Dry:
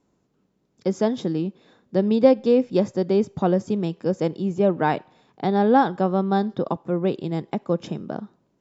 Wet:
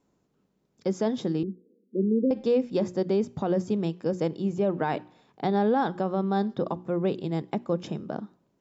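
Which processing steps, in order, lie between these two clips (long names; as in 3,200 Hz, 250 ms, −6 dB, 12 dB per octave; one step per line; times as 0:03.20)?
0:01.43–0:02.31: Chebyshev band-pass filter 190–480 Hz, order 4
mains-hum notches 60/120/180/240/300/360 Hz
brickwall limiter −13.5 dBFS, peak gain reduction 8 dB
level −2.5 dB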